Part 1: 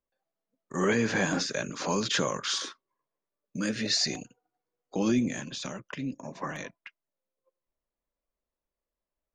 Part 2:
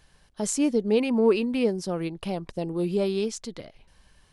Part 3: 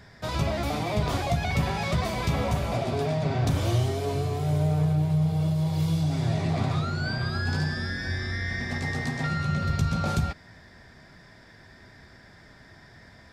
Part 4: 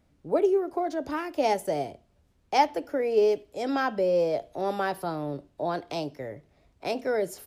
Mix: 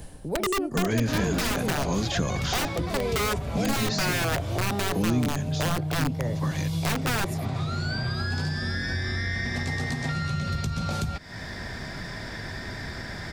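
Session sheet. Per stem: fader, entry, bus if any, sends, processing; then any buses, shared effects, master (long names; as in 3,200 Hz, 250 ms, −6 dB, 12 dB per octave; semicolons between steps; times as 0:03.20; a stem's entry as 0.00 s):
−4.0 dB, 0.00 s, no send, parametric band 110 Hz +13 dB 2.1 octaves
−1.5 dB, 0.00 s, no send, flat-topped bell 2,500 Hz −11 dB 2.9 octaves; automatic ducking −9 dB, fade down 0.20 s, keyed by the fourth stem
+1.0 dB, 0.85 s, no send, downward compressor 3 to 1, threshold −35 dBFS, peak gain reduction 12 dB
−11.5 dB, 0.00 s, no send, low-shelf EQ 160 Hz +10.5 dB; automatic gain control gain up to 12 dB; wrap-around overflow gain 11 dB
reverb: not used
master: low-shelf EQ 78 Hz +8.5 dB; multiband upward and downward compressor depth 70%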